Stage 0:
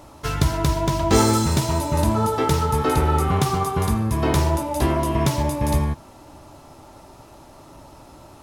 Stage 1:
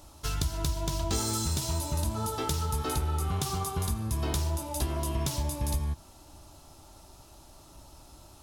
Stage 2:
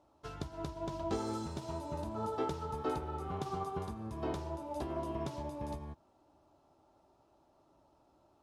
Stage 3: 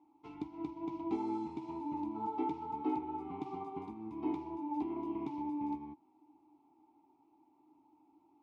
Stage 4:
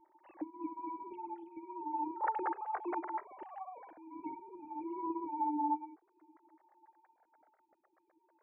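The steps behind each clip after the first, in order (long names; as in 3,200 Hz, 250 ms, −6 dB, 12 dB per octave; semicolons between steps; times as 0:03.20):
graphic EQ with 10 bands 125 Hz −8 dB, 250 Hz −8 dB, 500 Hz −10 dB, 1,000 Hz −7 dB, 2,000 Hz −10 dB; downward compressor 5 to 1, threshold −26 dBFS, peak gain reduction 8 dB
resonant band-pass 510 Hz, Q 0.73; expander for the loud parts 1.5 to 1, over −54 dBFS; level +1.5 dB
formant filter u; level +10 dB
three sine waves on the formant tracks; flanger whose copies keep moving one way falling 0.31 Hz; level +6 dB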